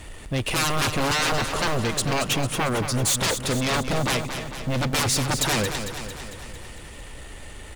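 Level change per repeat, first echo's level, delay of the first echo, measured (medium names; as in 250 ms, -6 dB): -4.5 dB, -8.5 dB, 225 ms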